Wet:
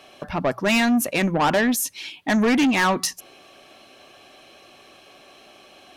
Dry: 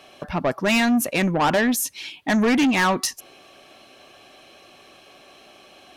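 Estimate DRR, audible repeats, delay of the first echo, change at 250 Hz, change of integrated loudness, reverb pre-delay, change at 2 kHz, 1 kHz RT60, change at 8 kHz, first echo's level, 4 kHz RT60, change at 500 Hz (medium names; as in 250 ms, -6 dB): no reverb, no echo, no echo, 0.0 dB, 0.0 dB, no reverb, 0.0 dB, no reverb, 0.0 dB, no echo, no reverb, 0.0 dB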